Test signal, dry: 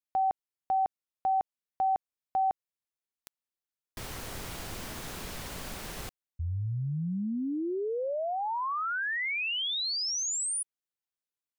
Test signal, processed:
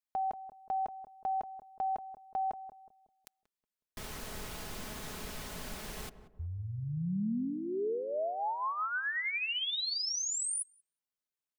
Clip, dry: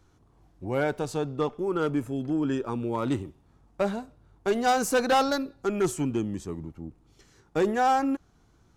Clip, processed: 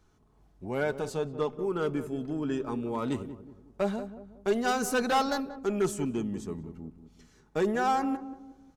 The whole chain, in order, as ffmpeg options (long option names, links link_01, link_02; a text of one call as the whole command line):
ffmpeg -i in.wav -filter_complex "[0:a]aecho=1:1:4.7:0.37,asplit=2[link_01][link_02];[link_02]adelay=184,lowpass=frequency=810:poles=1,volume=-10.5dB,asplit=2[link_03][link_04];[link_04]adelay=184,lowpass=frequency=810:poles=1,volume=0.43,asplit=2[link_05][link_06];[link_06]adelay=184,lowpass=frequency=810:poles=1,volume=0.43,asplit=2[link_07][link_08];[link_08]adelay=184,lowpass=frequency=810:poles=1,volume=0.43,asplit=2[link_09][link_10];[link_10]adelay=184,lowpass=frequency=810:poles=1,volume=0.43[link_11];[link_01][link_03][link_05][link_07][link_09][link_11]amix=inputs=6:normalize=0,volume=-3.5dB" out.wav